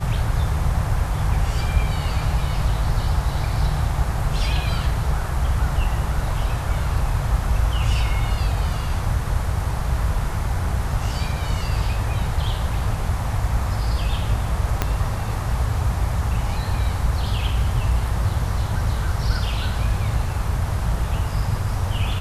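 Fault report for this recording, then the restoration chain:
14.82 pop -5 dBFS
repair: de-click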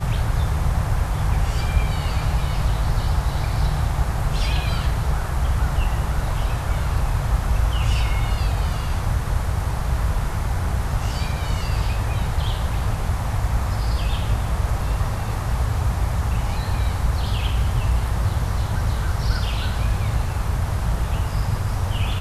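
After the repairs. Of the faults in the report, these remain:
14.82 pop

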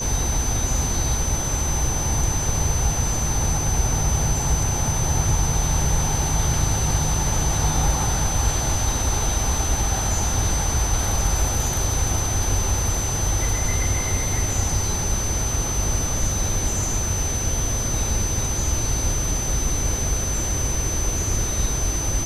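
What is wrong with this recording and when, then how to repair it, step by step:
tone 6100 Hz -26 dBFS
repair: notch 6100 Hz, Q 30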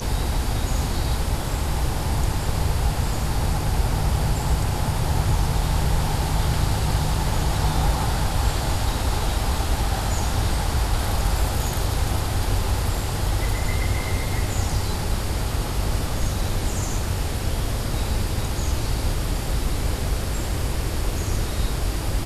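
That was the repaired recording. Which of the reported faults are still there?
none

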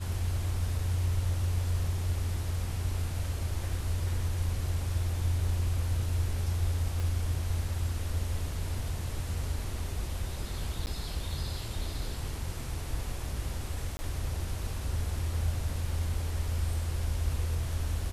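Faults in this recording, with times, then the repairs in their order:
7 pop
10.86–10.87 gap 9.8 ms
13.97–13.99 gap 20 ms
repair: de-click; interpolate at 10.86, 9.8 ms; interpolate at 13.97, 20 ms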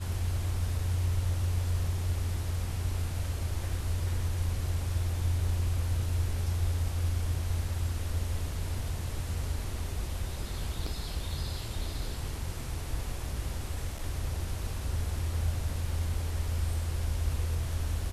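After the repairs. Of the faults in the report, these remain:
7 pop

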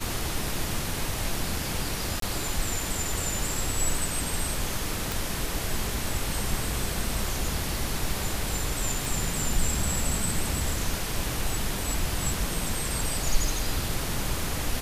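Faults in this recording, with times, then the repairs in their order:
2.2–2.22 gap 23 ms
5.12 pop
9.05 pop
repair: de-click; interpolate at 2.2, 23 ms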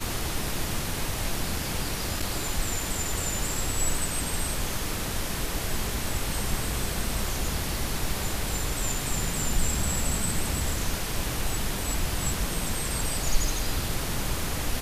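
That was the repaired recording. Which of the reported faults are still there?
none

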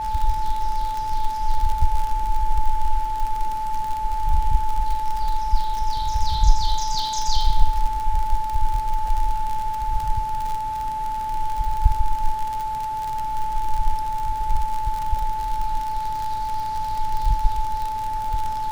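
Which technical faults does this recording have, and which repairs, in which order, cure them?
crackle 55/s -24 dBFS
tone 870 Hz -24 dBFS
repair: de-click; notch 870 Hz, Q 30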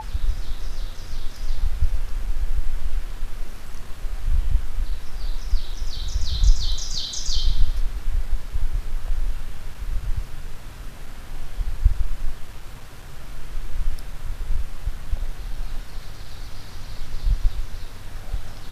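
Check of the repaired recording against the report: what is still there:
none

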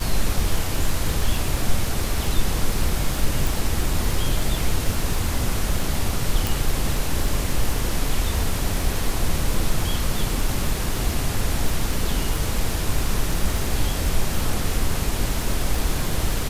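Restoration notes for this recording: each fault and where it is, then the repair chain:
crackle 56/s -25 dBFS
3.47 pop
6.47 pop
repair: de-click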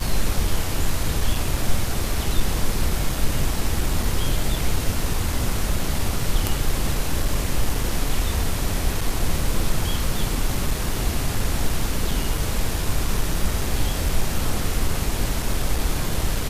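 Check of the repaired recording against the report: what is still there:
6.47 pop

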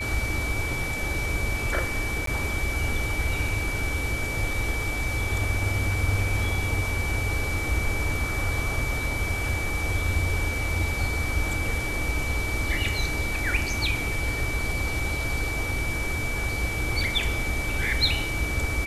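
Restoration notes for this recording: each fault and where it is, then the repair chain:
tone 2300 Hz -30 dBFS
2.26–2.27 gap 13 ms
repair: notch 2300 Hz, Q 30; interpolate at 2.26, 13 ms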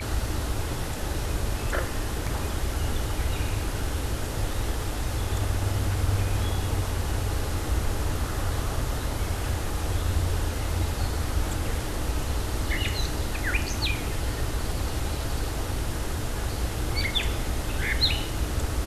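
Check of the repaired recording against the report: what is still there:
none

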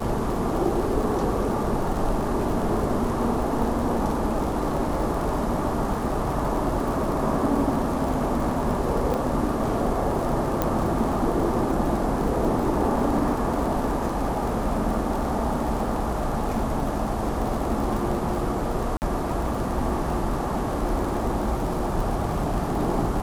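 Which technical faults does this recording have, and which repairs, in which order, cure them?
crackle 56/s -29 dBFS
9.14 pop -15 dBFS
10.62 pop -9 dBFS
18.97–19.02 gap 49 ms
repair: de-click; interpolate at 18.97, 49 ms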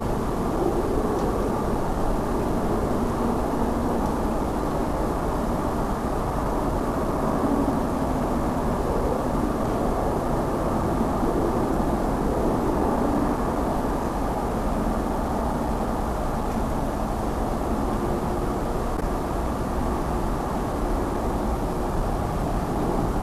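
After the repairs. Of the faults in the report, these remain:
9.14 pop
10.62 pop

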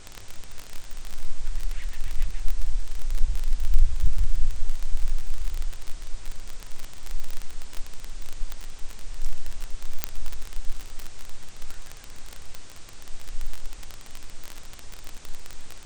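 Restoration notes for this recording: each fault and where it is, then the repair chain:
crackle 30/s -23 dBFS
10.04 pop -6 dBFS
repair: de-click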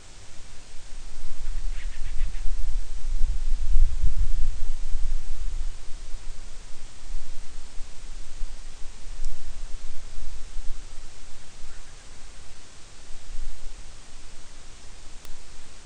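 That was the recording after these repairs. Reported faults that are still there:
none

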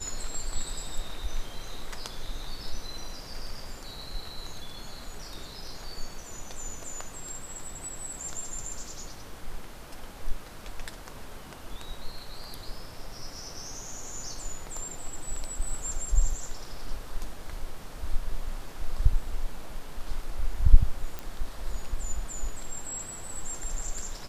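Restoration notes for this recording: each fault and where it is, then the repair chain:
21.19 pop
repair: de-click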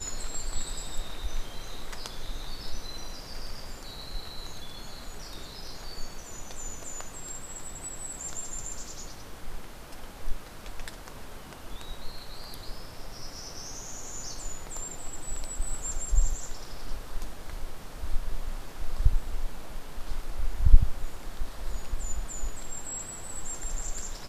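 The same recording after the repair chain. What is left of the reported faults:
none

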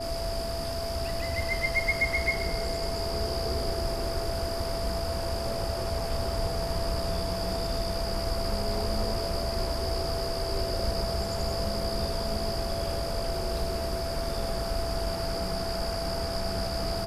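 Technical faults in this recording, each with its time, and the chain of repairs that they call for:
tone 670 Hz -33 dBFS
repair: notch 670 Hz, Q 30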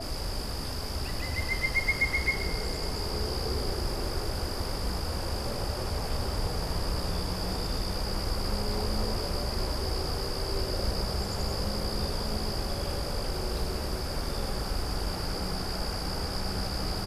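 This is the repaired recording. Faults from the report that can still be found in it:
none

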